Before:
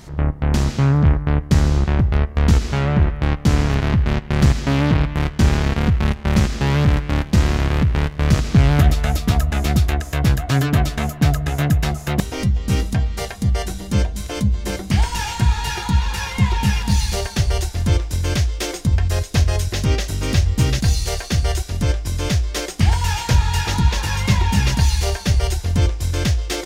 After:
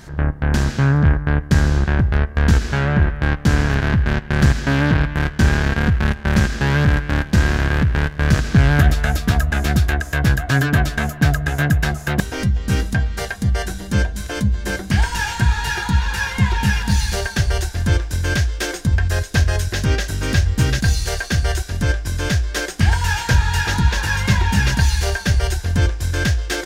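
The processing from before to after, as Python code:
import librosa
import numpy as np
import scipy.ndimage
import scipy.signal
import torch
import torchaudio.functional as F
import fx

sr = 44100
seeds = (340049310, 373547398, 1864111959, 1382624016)

y = fx.peak_eq(x, sr, hz=1600.0, db=13.0, octaves=0.21)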